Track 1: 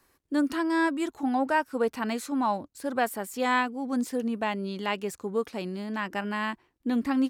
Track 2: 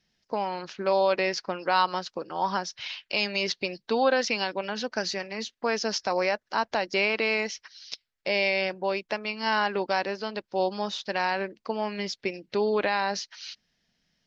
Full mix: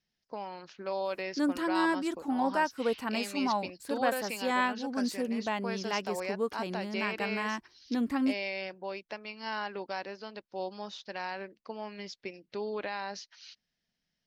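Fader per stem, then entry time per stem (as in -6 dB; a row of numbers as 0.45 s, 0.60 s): -3.5 dB, -10.5 dB; 1.05 s, 0.00 s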